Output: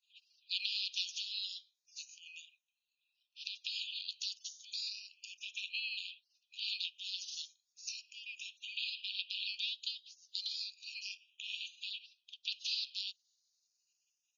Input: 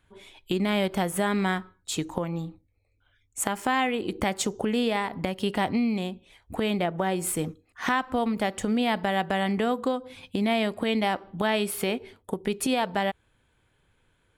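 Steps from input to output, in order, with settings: spectral gate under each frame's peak -30 dB weak; brick-wall FIR band-pass 2400–6900 Hz; endless phaser +0.34 Hz; gain +13 dB

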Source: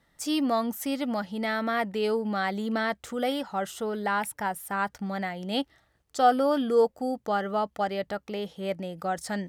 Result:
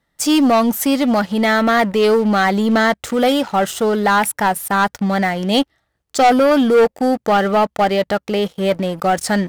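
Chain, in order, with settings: sample leveller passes 3; gain +3.5 dB

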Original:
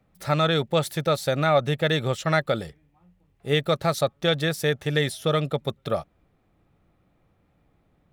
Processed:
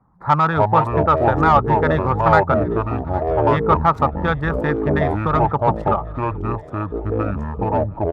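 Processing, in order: Wiener smoothing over 15 samples; EQ curve 140 Hz 0 dB, 630 Hz -13 dB, 930 Hz +10 dB, 2900 Hz -21 dB, 6900 Hz -28 dB; in parallel at -3.5 dB: soft clip -22 dBFS, distortion -13 dB; on the sum: low shelf 62 Hz -12 dB; on a send: feedback echo 0.808 s, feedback 48%, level -22 dB; on the sum: harmonic-percussive split percussive +6 dB; echoes that change speed 0.177 s, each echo -6 st, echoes 3; gain +2.5 dB

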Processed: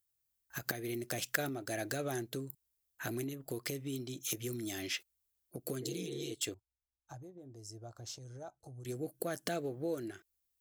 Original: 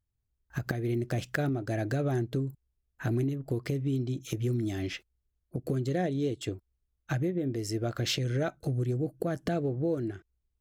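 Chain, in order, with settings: RIAA curve recording; 5.84–6.29 spectral repair 210–2200 Hz after; 6.54–8.85 EQ curve 110 Hz 0 dB, 160 Hz -13 dB, 530 Hz -14 dB, 870 Hz -4 dB, 2000 Hz -30 dB, 3200 Hz -27 dB, 5900 Hz -15 dB, 8900 Hz -19 dB, 13000 Hz -29 dB; gain -3 dB

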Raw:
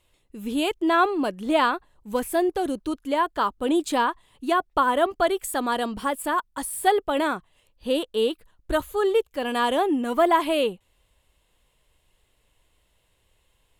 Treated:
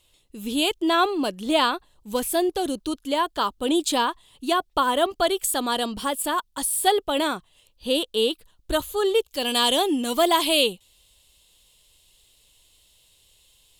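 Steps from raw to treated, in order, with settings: resonant high shelf 2600 Hz +7 dB, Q 1.5, from 9.28 s +13 dB

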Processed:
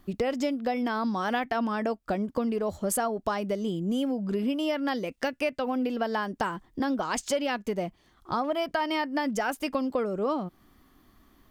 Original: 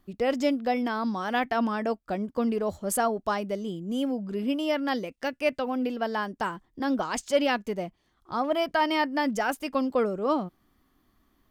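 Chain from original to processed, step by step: compressor, threshold -33 dBFS, peak gain reduction 14.5 dB; gain +7.5 dB

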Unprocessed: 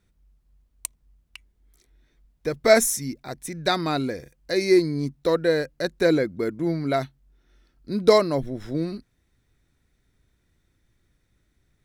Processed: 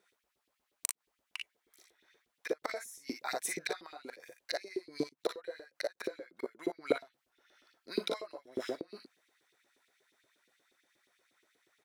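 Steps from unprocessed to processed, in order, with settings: flipped gate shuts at -17 dBFS, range -26 dB; early reflections 41 ms -6.5 dB, 57 ms -7 dB; LFO high-pass saw up 8.4 Hz 340–3500 Hz; gain -1 dB

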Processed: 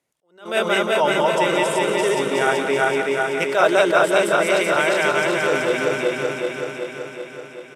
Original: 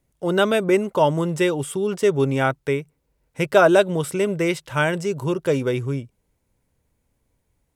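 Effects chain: regenerating reverse delay 0.19 s, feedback 79%, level -0.5 dB; in parallel at 0 dB: limiter -10 dBFS, peak gain reduction 9.5 dB; on the sum: weighting filter A; downsampling 32000 Hz; on a send: thinning echo 0.178 s, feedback 67%, high-pass 300 Hz, level -9 dB; on the sum: attack slew limiter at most 160 dB/s; gain -5 dB

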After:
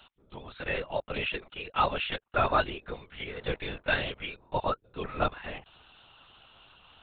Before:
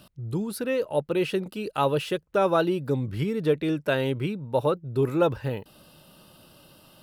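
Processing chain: 3.33–4.02 octaver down 1 oct, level +2 dB; HPF 950 Hz 12 dB/oct; LPC vocoder at 8 kHz whisper; gain +3 dB

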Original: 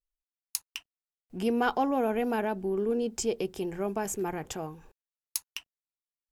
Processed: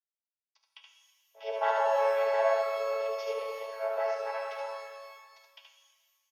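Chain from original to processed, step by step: chord vocoder major triad, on A3; elliptic low-pass 5600 Hz; gate -52 dBFS, range -19 dB; steep high-pass 470 Hz 96 dB/oct; harmonic-percussive split harmonic +8 dB; echo 74 ms -3.5 dB; shimmer reverb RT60 1.6 s, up +12 st, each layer -8 dB, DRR 4 dB

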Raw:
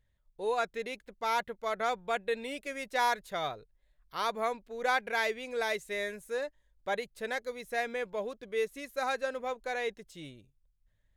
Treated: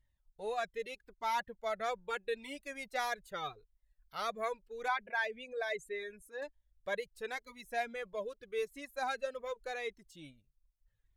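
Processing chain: 4.88–6.42 formant sharpening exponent 1.5; reverb removal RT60 0.73 s; cascading flanger falling 0.8 Hz

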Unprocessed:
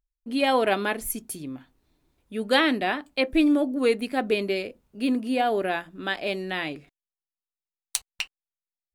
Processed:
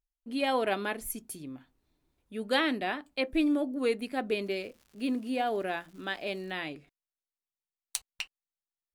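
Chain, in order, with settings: 4.41–6.5 crackle 290/s -42 dBFS; gain -6.5 dB

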